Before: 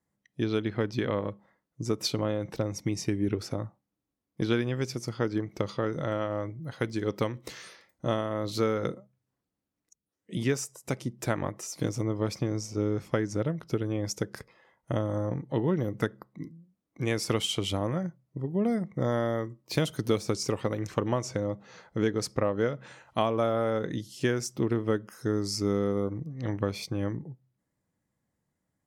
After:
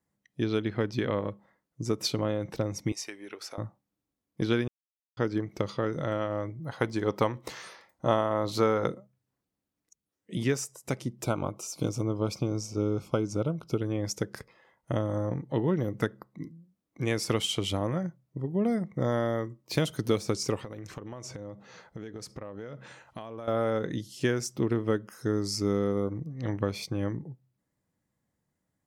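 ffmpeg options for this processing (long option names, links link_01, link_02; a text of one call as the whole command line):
ffmpeg -i in.wav -filter_complex "[0:a]asettb=1/sr,asplit=3[link_01][link_02][link_03];[link_01]atrim=end=2.924[link_04];[link_02]atrim=start=2.92:end=3.58,asetpts=PTS-STARTPTS,afade=type=in:duration=0.004:curve=qsin,afade=type=out:start_time=0.656:duration=0.004:curve=qsin,highpass=790[link_05];[link_03]atrim=start=3.576[link_06];[link_04][link_05]acrossfade=duration=0.004:curve1=hsin:curve2=qsin[link_07];[link_07][link_06]acrossfade=duration=0.004:curve1=qsin:curve2=hsin,asettb=1/sr,asplit=3[link_08][link_09][link_10];[link_08]atrim=end=6.604[link_11];[link_09]atrim=start=6.6:end=8.88,asetpts=PTS-STARTPTS,afade=type=in:duration=0.004:curve=qsin,afade=type=out:start_time=2.276:duration=0.004:curve=qsin,equalizer=frequency=890:width=1.2:gain=8.5[link_12];[link_10]atrim=start=8.876[link_13];[link_11][link_12]acrossfade=duration=0.004:curve1=hsin:curve2=qsin[link_14];[link_14][link_13]acrossfade=duration=0.004:curve1=qsin:curve2=hsin,asplit=3[link_15][link_16][link_17];[link_15]afade=type=out:start_time=11.22:duration=0.02[link_18];[link_16]asuperstop=centerf=1800:order=8:qfactor=2.6,afade=type=in:start_time=11.22:duration=0.02,afade=type=out:start_time=13.8:duration=0.02[link_19];[link_17]afade=type=in:start_time=13.8:duration=0.02[link_20];[link_18][link_19][link_20]amix=inputs=3:normalize=0,asettb=1/sr,asplit=3[link_21][link_22][link_23];[link_21]atrim=end=20.634[link_24];[link_22]atrim=start=20.63:end=23.48,asetpts=PTS-STARTPTS,afade=type=in:duration=0.004:curve=qsin,afade=type=out:start_time=2.846:duration=0.004:curve=qsin,acompressor=threshold=-36dB:ratio=10:attack=3.2:release=140:knee=1:detection=peak[link_25];[link_23]atrim=start=23.476[link_26];[link_24][link_25]acrossfade=duration=0.004:curve1=hsin:curve2=qsin[link_27];[link_27][link_26]acrossfade=duration=0.004:curve1=qsin:curve2=hsin,asplit=3[link_28][link_29][link_30];[link_28]atrim=end=4.68,asetpts=PTS-STARTPTS,afade=type=out:start_time=4.676:duration=0.004:curve=hsin[link_31];[link_29]atrim=start=4.68:end=5.17,asetpts=PTS-STARTPTS,volume=0[link_32];[link_30]atrim=start=5.17,asetpts=PTS-STARTPTS,afade=type=in:duration=0.004:curve=hsin[link_33];[link_31][link_32][link_33]concat=n=3:v=0:a=1" out.wav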